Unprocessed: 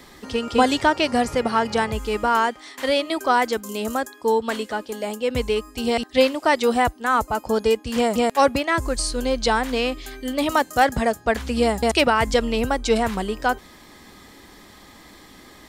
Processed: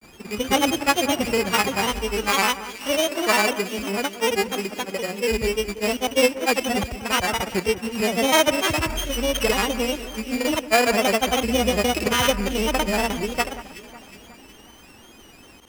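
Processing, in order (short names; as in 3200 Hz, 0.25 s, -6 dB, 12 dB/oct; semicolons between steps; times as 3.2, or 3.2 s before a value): sample sorter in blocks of 16 samples; grains, pitch spread up and down by 3 st; echo with dull and thin repeats by turns 0.183 s, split 1900 Hz, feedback 71%, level -13.5 dB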